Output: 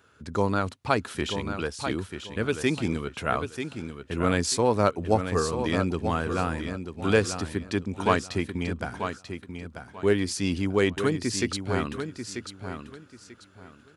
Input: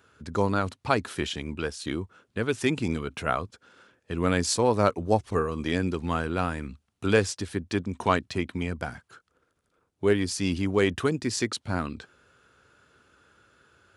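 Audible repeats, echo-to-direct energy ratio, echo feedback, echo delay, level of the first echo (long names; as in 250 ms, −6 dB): 3, −7.5 dB, 24%, 939 ms, −8.0 dB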